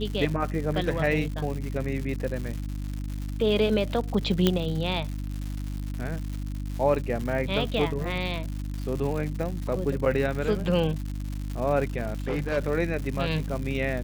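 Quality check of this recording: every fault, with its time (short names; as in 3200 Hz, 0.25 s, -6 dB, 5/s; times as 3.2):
crackle 210/s -32 dBFS
hum 50 Hz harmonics 6 -32 dBFS
4.47 pop -7 dBFS
12–12.58 clipped -23 dBFS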